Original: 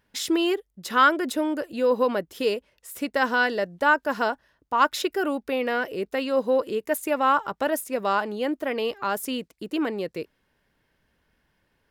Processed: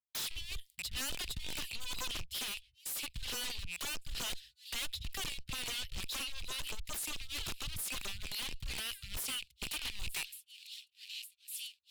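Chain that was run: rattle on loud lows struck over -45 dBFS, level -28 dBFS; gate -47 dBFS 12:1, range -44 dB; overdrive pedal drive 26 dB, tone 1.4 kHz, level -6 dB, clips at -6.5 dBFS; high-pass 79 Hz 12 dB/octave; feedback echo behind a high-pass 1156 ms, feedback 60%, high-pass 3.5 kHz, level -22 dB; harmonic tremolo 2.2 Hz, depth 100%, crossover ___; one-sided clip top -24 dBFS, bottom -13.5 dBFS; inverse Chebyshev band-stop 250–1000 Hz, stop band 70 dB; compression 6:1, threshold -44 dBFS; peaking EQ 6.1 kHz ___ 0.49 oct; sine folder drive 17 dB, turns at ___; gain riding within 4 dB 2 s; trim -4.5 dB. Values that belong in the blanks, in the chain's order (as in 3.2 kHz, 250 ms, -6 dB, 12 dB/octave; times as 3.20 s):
590 Hz, -8.5 dB, -30 dBFS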